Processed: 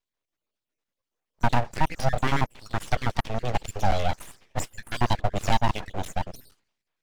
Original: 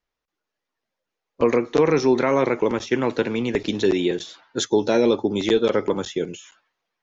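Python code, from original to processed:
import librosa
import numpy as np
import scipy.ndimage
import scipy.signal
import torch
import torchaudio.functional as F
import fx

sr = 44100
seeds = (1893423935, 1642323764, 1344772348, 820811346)

y = fx.spec_dropout(x, sr, seeds[0], share_pct=49)
y = np.abs(y)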